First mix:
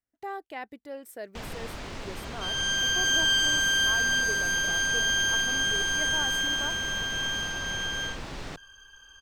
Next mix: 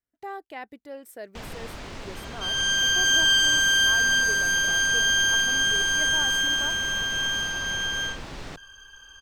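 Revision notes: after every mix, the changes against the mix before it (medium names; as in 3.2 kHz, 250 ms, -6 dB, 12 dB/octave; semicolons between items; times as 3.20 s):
second sound +4.0 dB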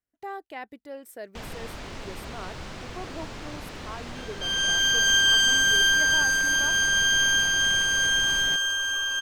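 second sound: entry +2.00 s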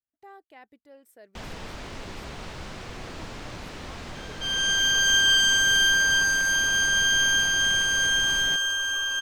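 speech -11.5 dB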